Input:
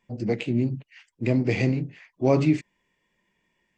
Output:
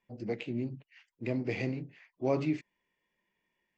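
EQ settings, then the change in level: low-pass 6.9 kHz 24 dB/octave; tone controls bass -5 dB, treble -3 dB; -8.0 dB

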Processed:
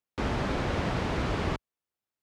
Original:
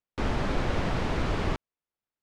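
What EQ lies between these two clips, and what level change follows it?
high-pass 48 Hz; 0.0 dB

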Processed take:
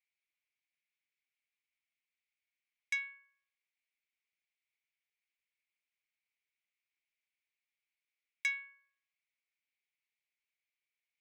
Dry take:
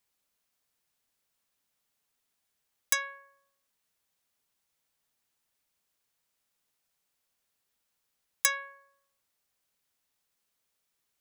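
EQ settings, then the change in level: ladder band-pass 2.4 kHz, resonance 75%; 0.0 dB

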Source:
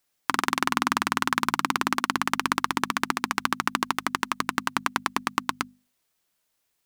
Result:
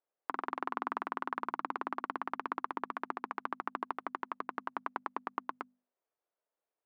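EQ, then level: ladder band-pass 610 Hz, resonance 30%; +4.0 dB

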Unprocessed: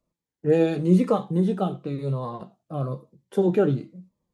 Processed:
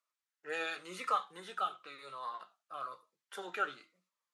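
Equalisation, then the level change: band-pass filter 1.6 kHz, Q 1; differentiator; peaking EQ 1.3 kHz +9 dB 0.44 oct; +11.5 dB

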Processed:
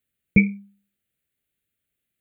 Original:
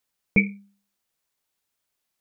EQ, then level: high-pass 43 Hz; bass shelf 270 Hz +10 dB; static phaser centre 2.3 kHz, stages 4; 0.0 dB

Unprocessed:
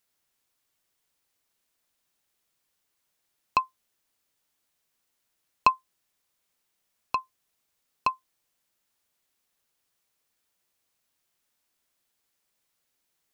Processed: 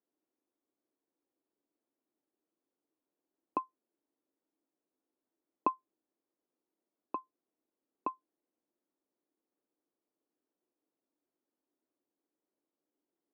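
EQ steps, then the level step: ladder band-pass 340 Hz, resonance 60%; +10.5 dB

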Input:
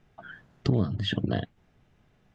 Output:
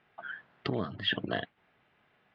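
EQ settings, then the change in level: high-pass 690 Hz 6 dB/octave; distance through air 440 m; tilt shelf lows -5 dB, about 1.2 kHz; +7.0 dB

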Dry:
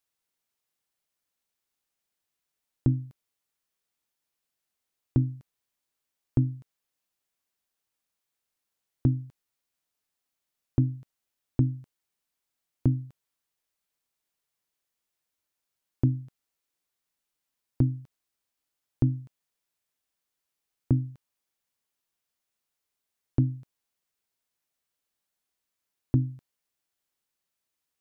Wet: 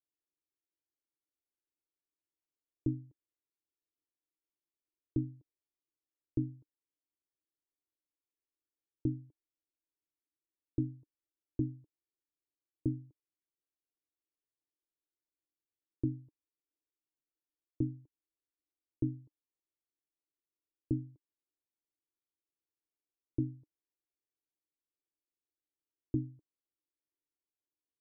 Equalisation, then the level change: cascade formant filter u; static phaser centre 810 Hz, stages 6; +5.0 dB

